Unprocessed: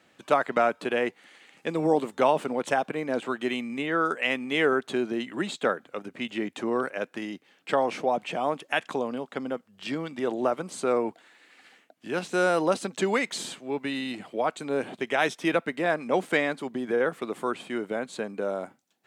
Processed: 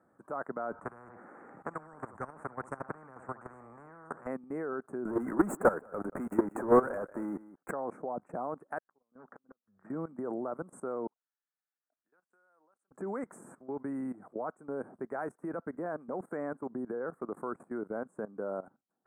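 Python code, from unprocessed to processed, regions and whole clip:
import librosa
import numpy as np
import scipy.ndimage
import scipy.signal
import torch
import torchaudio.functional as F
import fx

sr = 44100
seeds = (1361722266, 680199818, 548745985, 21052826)

y = fx.chain(x, sr, fx.spacing_loss(db_at_10k=21),
    fx.room_flutter(wall_m=11.9, rt60_s=0.25),
    fx.spectral_comp(ratio=10.0), at=(0.72, 4.27))
y = fx.chain(y, sr, fx.low_shelf(hz=140.0, db=-9.0),
    fx.leveller(passes=5),
    fx.echo_single(ms=183, db=-18.0), at=(5.05, 7.71))
y = fx.chain(y, sr, fx.high_shelf_res(hz=2600.0, db=-11.5, q=3.0),
    fx.gate_flip(shuts_db=-20.0, range_db=-41),
    fx.transformer_sat(knee_hz=2200.0), at=(8.78, 9.9))
y = fx.chain(y, sr, fx.bandpass_q(hz=3700.0, q=17.0),
    fx.pre_swell(db_per_s=64.0), at=(11.07, 12.91))
y = scipy.signal.sosfilt(scipy.signal.cheby1(3, 1.0, [1400.0, 8700.0], 'bandstop', fs=sr, output='sos'), y)
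y = fx.high_shelf(y, sr, hz=5000.0, db=-11.5)
y = fx.level_steps(y, sr, step_db=17)
y = y * librosa.db_to_amplitude(-1.5)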